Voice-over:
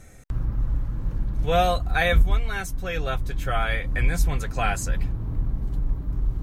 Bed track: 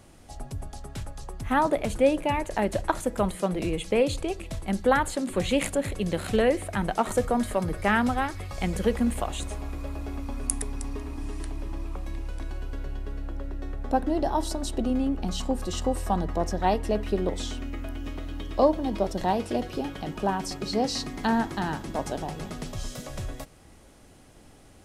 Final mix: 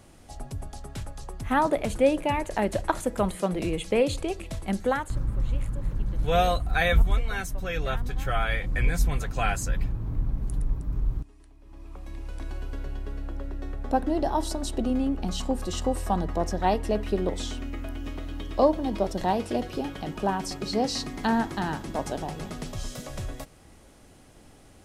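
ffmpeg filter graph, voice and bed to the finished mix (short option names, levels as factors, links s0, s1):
-filter_complex "[0:a]adelay=4800,volume=0.794[s0];[1:a]volume=10,afade=t=out:st=4.71:d=0.48:silence=0.1,afade=t=in:st=11.61:d=0.92:silence=0.1[s1];[s0][s1]amix=inputs=2:normalize=0"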